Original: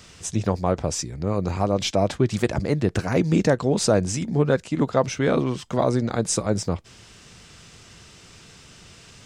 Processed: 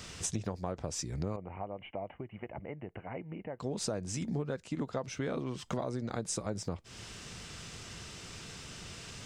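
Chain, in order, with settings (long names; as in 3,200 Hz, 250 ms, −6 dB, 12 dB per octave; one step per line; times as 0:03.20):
downward compressor 12 to 1, threshold −33 dBFS, peak gain reduction 19.5 dB
0:01.36–0:03.60: Chebyshev low-pass with heavy ripple 3,000 Hz, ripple 9 dB
level +1 dB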